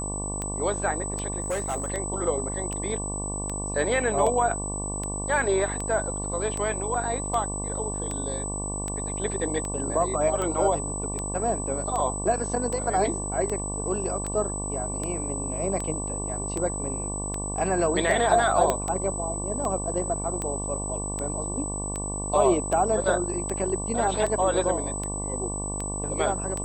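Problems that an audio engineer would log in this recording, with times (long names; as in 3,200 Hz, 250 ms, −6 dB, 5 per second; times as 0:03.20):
mains buzz 50 Hz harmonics 23 −33 dBFS
scratch tick 78 rpm −17 dBFS
whistle 8,000 Hz −32 dBFS
0:01.40–0:01.90: clipping −24 dBFS
0:18.70: click −9 dBFS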